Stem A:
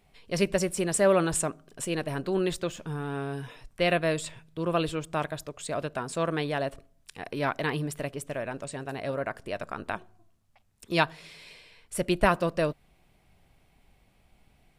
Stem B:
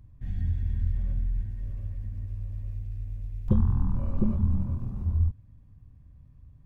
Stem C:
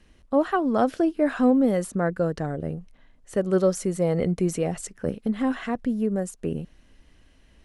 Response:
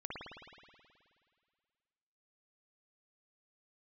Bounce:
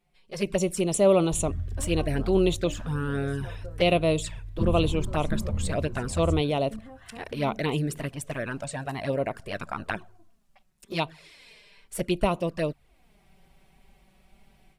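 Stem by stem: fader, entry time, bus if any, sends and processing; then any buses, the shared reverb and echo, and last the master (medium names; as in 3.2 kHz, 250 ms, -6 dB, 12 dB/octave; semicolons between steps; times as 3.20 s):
-6.5 dB, 0.00 s, no send, level rider gain up to 13 dB; touch-sensitive flanger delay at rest 5.7 ms, full sweep at -14 dBFS
-4.5 dB, 1.10 s, no send, none
-4.5 dB, 1.45 s, no send, compression, threshold -30 dBFS, peak gain reduction 15 dB; inharmonic resonator 72 Hz, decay 0.21 s, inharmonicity 0.002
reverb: none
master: none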